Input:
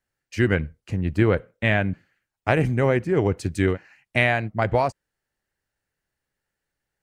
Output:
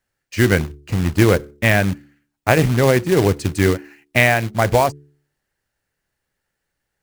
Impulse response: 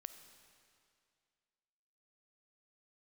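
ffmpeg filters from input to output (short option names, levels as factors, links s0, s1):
-af "acrusher=bits=3:mode=log:mix=0:aa=0.000001,bandreject=f=72.11:t=h:w=4,bandreject=f=144.22:t=h:w=4,bandreject=f=216.33:t=h:w=4,bandreject=f=288.44:t=h:w=4,bandreject=f=360.55:t=h:w=4,bandreject=f=432.66:t=h:w=4,volume=1.88"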